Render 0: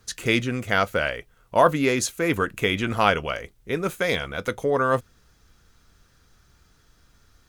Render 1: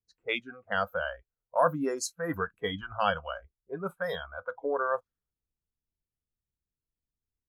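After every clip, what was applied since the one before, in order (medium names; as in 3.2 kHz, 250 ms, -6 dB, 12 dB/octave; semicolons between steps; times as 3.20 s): spectral noise reduction 26 dB; level-controlled noise filter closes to 500 Hz, open at -21 dBFS; trim -7 dB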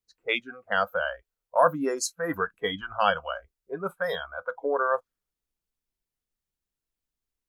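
peaking EQ 90 Hz -9.5 dB 2.1 oct; trim +4.5 dB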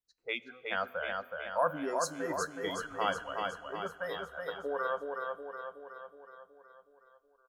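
on a send: feedback delay 370 ms, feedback 56%, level -4 dB; on the sum: Schroeder reverb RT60 2.7 s, combs from 25 ms, DRR 19 dB; trim -9 dB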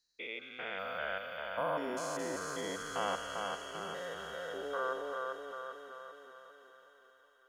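spectrogram pixelated in time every 200 ms; feedback echo behind a high-pass 219 ms, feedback 80%, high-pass 2.8 kHz, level -3 dB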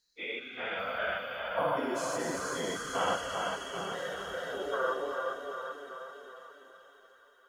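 phase randomisation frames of 50 ms; trim +4.5 dB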